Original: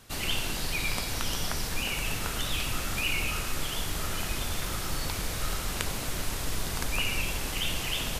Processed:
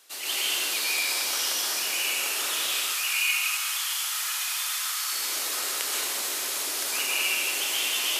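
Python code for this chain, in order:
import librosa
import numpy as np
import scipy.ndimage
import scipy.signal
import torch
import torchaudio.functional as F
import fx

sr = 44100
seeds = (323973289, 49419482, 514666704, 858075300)

y = fx.highpass(x, sr, hz=fx.steps((0.0, 350.0), (2.67, 910.0), (5.12, 330.0)), slope=24)
y = fx.high_shelf(y, sr, hz=2000.0, db=10.5)
y = fx.rev_plate(y, sr, seeds[0], rt60_s=1.4, hf_ratio=0.8, predelay_ms=115, drr_db=-6.5)
y = y * librosa.db_to_amplitude(-8.5)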